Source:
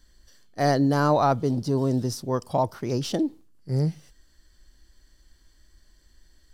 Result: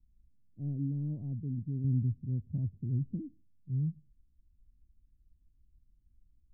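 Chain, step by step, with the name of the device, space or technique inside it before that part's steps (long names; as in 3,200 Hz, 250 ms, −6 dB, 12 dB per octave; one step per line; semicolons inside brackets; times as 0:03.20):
0:01.84–0:03.21: parametric band 69 Hz +9 dB 2.7 octaves
the neighbour's flat through the wall (low-pass filter 230 Hz 24 dB per octave; parametric band 90 Hz +4.5 dB 0.77 octaves)
level −8.5 dB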